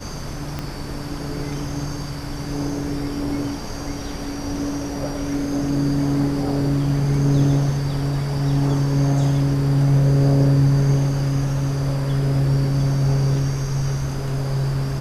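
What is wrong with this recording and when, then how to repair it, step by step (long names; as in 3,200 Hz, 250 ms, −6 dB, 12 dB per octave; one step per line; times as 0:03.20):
0:00.59: click −13 dBFS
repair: click removal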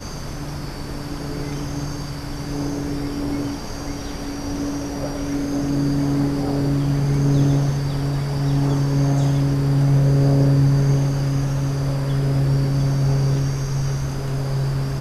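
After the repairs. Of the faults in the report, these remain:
0:00.59: click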